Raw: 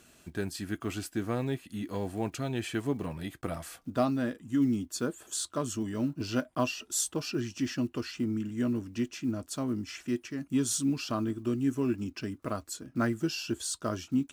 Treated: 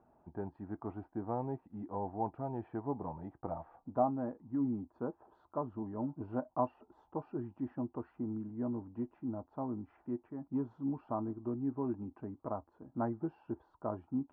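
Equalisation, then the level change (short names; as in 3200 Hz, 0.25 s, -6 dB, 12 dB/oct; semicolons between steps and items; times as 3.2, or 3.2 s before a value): ladder low-pass 930 Hz, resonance 75%; +4.0 dB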